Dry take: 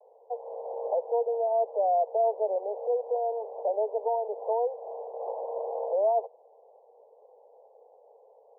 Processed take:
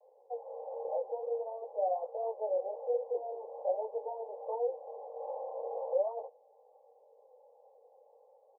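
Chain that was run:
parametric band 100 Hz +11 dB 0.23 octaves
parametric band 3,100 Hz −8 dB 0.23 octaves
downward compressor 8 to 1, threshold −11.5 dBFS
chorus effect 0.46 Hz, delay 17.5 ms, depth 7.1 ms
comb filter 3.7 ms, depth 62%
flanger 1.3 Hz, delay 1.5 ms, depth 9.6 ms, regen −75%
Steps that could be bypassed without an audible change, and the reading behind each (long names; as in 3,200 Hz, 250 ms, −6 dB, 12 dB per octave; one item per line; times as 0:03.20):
parametric band 100 Hz: nothing at its input below 360 Hz
parametric band 3,100 Hz: nothing at its input above 1,000 Hz
downward compressor, threshold −11.5 dBFS: peak of its input −16.5 dBFS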